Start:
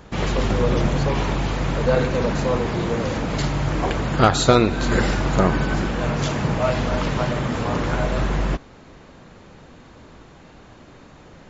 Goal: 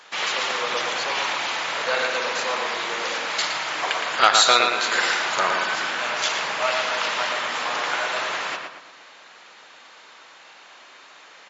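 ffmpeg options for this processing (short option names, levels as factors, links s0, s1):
-filter_complex "[0:a]highpass=820,equalizer=f=3600:w=0.41:g=8.5,asplit=2[s0][s1];[s1]adelay=115,lowpass=f=2800:p=1,volume=0.668,asplit=2[s2][s3];[s3]adelay=115,lowpass=f=2800:p=1,volume=0.44,asplit=2[s4][s5];[s5]adelay=115,lowpass=f=2800:p=1,volume=0.44,asplit=2[s6][s7];[s7]adelay=115,lowpass=f=2800:p=1,volume=0.44,asplit=2[s8][s9];[s9]adelay=115,lowpass=f=2800:p=1,volume=0.44,asplit=2[s10][s11];[s11]adelay=115,lowpass=f=2800:p=1,volume=0.44[s12];[s0][s2][s4][s6][s8][s10][s12]amix=inputs=7:normalize=0,volume=0.891"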